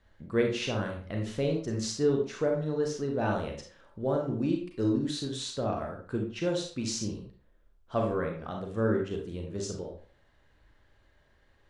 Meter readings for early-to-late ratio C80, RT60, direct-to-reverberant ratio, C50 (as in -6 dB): 9.5 dB, 0.45 s, 1.0 dB, 5.0 dB